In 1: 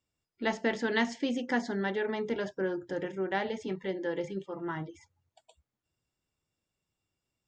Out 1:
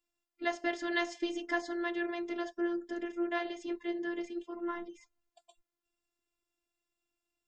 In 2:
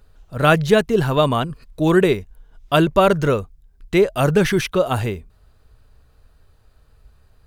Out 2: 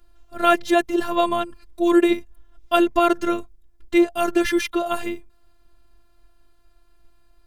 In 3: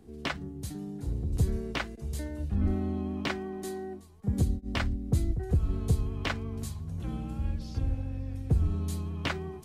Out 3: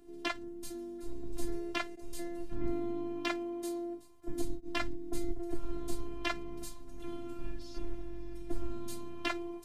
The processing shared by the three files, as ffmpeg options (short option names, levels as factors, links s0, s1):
-af "afftfilt=real='hypot(re,im)*cos(PI*b)':imag='0':win_size=512:overlap=0.75,equalizer=f=69:w=2.7:g=-11.5,volume=1.12"